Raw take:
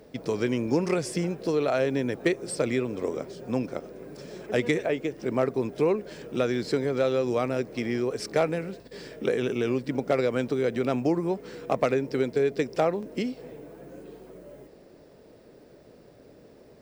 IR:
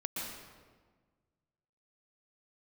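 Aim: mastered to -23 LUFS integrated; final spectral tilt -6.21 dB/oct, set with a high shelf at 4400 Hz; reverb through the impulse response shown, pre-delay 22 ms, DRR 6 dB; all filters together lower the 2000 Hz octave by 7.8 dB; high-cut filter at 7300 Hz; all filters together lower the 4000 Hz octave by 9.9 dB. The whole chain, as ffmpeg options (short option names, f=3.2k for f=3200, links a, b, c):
-filter_complex "[0:a]lowpass=7.3k,equalizer=f=2k:t=o:g=-7,equalizer=f=4k:t=o:g=-8.5,highshelf=f=4.4k:g=-3.5,asplit=2[a][b];[1:a]atrim=start_sample=2205,adelay=22[c];[b][c]afir=irnorm=-1:irlink=0,volume=-8.5dB[d];[a][d]amix=inputs=2:normalize=0,volume=4dB"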